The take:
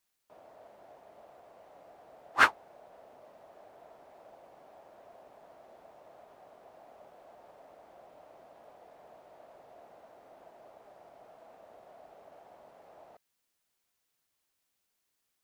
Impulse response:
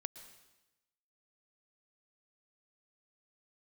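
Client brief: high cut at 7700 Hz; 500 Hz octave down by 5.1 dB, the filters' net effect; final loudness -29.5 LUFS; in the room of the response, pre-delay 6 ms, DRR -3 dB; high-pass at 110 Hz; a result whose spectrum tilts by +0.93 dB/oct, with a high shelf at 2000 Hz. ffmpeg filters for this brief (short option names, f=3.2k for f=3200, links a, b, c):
-filter_complex "[0:a]highpass=110,lowpass=7.7k,equalizer=f=500:t=o:g=-6.5,highshelf=f=2k:g=-4.5,asplit=2[a][b];[1:a]atrim=start_sample=2205,adelay=6[c];[b][c]afir=irnorm=-1:irlink=0,volume=6dB[d];[a][d]amix=inputs=2:normalize=0,volume=-3.5dB"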